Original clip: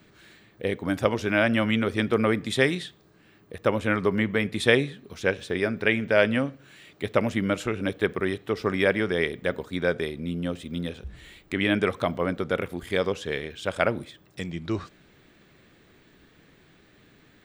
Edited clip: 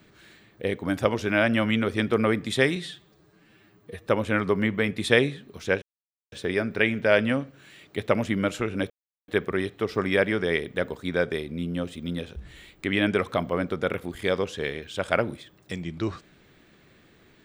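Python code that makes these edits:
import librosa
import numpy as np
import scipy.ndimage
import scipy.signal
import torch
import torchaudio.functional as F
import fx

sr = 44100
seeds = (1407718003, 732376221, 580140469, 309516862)

y = fx.edit(x, sr, fx.stretch_span(start_s=2.76, length_s=0.88, factor=1.5),
    fx.insert_silence(at_s=5.38, length_s=0.5),
    fx.insert_silence(at_s=7.96, length_s=0.38), tone=tone)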